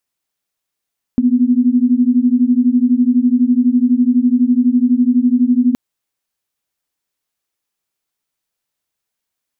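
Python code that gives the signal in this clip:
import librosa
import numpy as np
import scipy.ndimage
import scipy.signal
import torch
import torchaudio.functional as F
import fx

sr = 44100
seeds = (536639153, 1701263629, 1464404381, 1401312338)

y = fx.two_tone_beats(sr, length_s=4.57, hz=241.0, beat_hz=12.0, level_db=-12.5)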